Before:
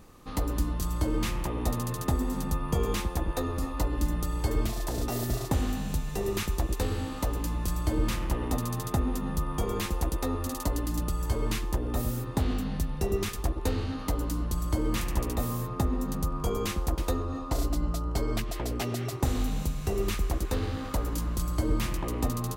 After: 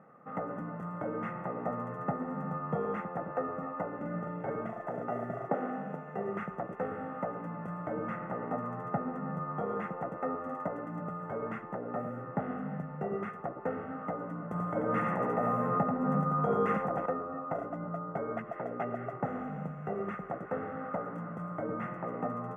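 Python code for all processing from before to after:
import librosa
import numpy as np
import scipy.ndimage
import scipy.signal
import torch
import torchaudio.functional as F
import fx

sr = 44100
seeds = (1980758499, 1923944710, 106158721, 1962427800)

y = fx.chain(x, sr, fx.air_absorb(metres=50.0),
    fx.doubler(ms=45.0, db=-3.5), at=(3.96, 4.5))
y = fx.chain(y, sr, fx.highpass(hz=230.0, slope=12),
    fx.peak_eq(hz=410.0, db=5.5, octaves=1.6), at=(5.49, 6.15))
y = fx.chain(y, sr, fx.high_shelf(hz=4900.0, db=4.5),
    fx.echo_single(ms=87, db=-5.0),
    fx.env_flatten(amount_pct=70), at=(14.51, 17.06))
y = scipy.signal.sosfilt(scipy.signal.ellip(3, 1.0, 40, [160.0, 1700.0], 'bandpass', fs=sr, output='sos'), y)
y = fx.low_shelf(y, sr, hz=360.0, db=-3.0)
y = y + 0.61 * np.pad(y, (int(1.5 * sr / 1000.0), 0))[:len(y)]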